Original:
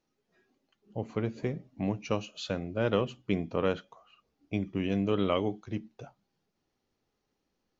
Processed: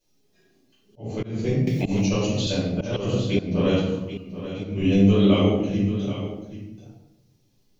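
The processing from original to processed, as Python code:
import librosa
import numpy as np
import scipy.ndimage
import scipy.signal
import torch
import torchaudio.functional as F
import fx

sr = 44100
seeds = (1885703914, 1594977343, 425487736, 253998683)

y = fx.high_shelf(x, sr, hz=2300.0, db=8.5)
y = fx.hum_notches(y, sr, base_hz=60, count=7)
y = fx.room_shoebox(y, sr, seeds[0], volume_m3=290.0, walls='mixed', distance_m=5.1)
y = fx.auto_swell(y, sr, attack_ms=210.0)
y = fx.peak_eq(y, sr, hz=1400.0, db=-12.0, octaves=2.2)
y = y + 10.0 ** (-12.0 / 20.0) * np.pad(y, (int(784 * sr / 1000.0), 0))[:len(y)]
y = fx.band_squash(y, sr, depth_pct=100, at=(1.67, 2.47))
y = y * 10.0 ** (-2.0 / 20.0)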